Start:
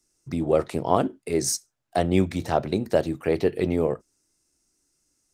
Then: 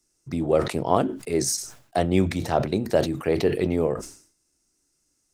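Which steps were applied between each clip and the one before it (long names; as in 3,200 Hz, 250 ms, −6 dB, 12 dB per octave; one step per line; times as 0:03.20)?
level that may fall only so fast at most 110 dB per second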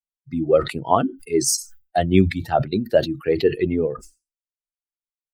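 spectral dynamics exaggerated over time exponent 2
level +7.5 dB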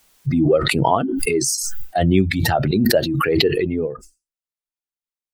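background raised ahead of every attack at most 21 dB per second
level −1.5 dB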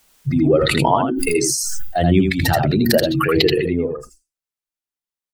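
single-tap delay 81 ms −4.5 dB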